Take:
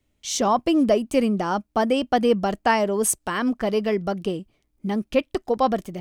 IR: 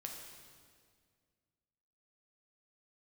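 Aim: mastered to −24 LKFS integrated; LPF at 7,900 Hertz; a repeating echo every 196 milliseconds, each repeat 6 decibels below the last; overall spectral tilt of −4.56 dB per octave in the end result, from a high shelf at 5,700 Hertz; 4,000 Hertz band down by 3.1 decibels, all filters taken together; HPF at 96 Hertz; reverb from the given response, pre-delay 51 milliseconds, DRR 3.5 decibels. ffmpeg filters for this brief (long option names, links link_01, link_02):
-filter_complex "[0:a]highpass=96,lowpass=7900,equalizer=frequency=4000:width_type=o:gain=-6.5,highshelf=frequency=5700:gain=5,aecho=1:1:196|392|588|784|980|1176:0.501|0.251|0.125|0.0626|0.0313|0.0157,asplit=2[link_01][link_02];[1:a]atrim=start_sample=2205,adelay=51[link_03];[link_02][link_03]afir=irnorm=-1:irlink=0,volume=-1dB[link_04];[link_01][link_04]amix=inputs=2:normalize=0,volume=-4dB"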